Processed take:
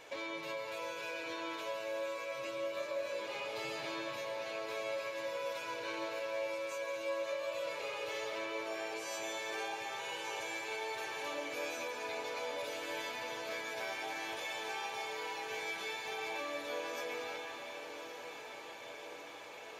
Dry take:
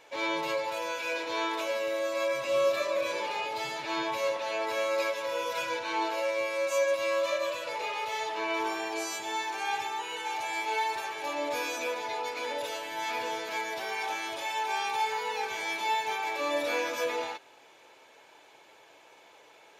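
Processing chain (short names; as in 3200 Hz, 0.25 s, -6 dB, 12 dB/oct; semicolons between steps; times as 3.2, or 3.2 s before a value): low shelf 160 Hz +5.5 dB; notch 870 Hz, Q 16; compressor 10:1, threshold -42 dBFS, peak gain reduction 20 dB; diffused feedback echo 1.164 s, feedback 64%, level -9 dB; on a send at -3 dB: reverb RT60 3.1 s, pre-delay 0.104 s; on the sum: gain +2 dB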